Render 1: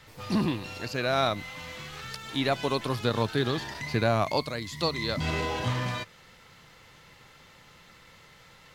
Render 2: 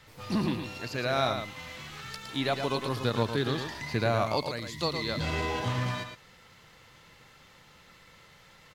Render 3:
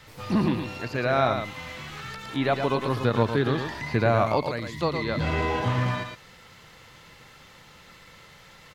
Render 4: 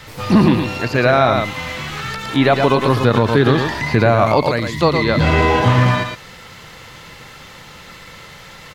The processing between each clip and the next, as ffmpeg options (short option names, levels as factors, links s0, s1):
-af "aecho=1:1:112:0.447,volume=0.75"
-filter_complex "[0:a]acrossover=split=2700[s0][s1];[s1]acompressor=threshold=0.00316:ratio=4:attack=1:release=60[s2];[s0][s2]amix=inputs=2:normalize=0,volume=1.88"
-af "alimiter=level_in=4.47:limit=0.891:release=50:level=0:latency=1,volume=0.891"